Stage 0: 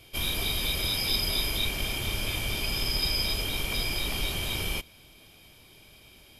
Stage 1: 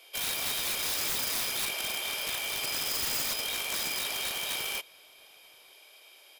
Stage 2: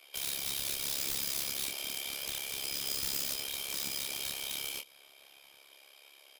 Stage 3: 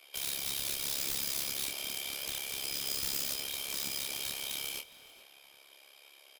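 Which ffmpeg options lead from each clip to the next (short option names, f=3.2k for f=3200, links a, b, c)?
-filter_complex "[0:a]highpass=f=480:w=0.5412,highpass=f=480:w=1.3066,aeval=exprs='(mod(18.8*val(0)+1,2)-1)/18.8':c=same,asplit=2[a][b];[b]adelay=932.9,volume=-27dB,highshelf=f=4k:g=-21[c];[a][c]amix=inputs=2:normalize=0"
-filter_complex "[0:a]acrossover=split=460|3000[a][b][c];[b]acompressor=threshold=-46dB:ratio=6[d];[a][d][c]amix=inputs=3:normalize=0,tremolo=f=69:d=0.889,asplit=2[e][f];[f]adelay=26,volume=-5.5dB[g];[e][g]amix=inputs=2:normalize=0"
-filter_complex "[0:a]asplit=2[a][b];[b]adelay=414,volume=-15dB,highshelf=f=4k:g=-9.32[c];[a][c]amix=inputs=2:normalize=0"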